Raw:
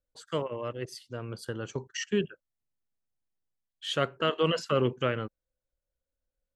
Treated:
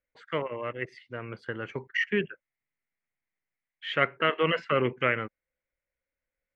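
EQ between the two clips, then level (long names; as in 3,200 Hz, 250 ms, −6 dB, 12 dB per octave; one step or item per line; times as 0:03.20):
low-pass with resonance 2,100 Hz, resonance Q 6.5
low-shelf EQ 86 Hz −9 dB
0.0 dB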